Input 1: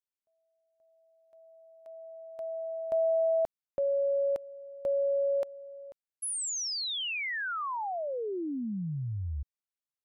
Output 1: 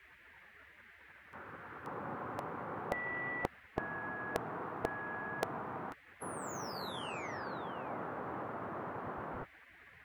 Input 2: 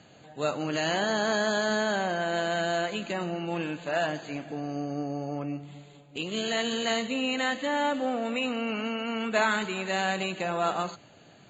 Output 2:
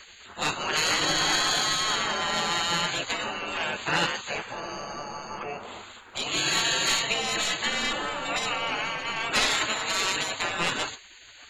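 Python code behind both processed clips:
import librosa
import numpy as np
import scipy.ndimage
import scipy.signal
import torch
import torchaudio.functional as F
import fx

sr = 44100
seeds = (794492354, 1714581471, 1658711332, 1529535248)

y = fx.dmg_noise_band(x, sr, seeds[0], low_hz=100.0, high_hz=1300.0, level_db=-55.0)
y = fx.fold_sine(y, sr, drive_db=7, ceiling_db=-12.5)
y = fx.spec_gate(y, sr, threshold_db=-15, keep='weak')
y = y * librosa.db_to_amplitude(2.0)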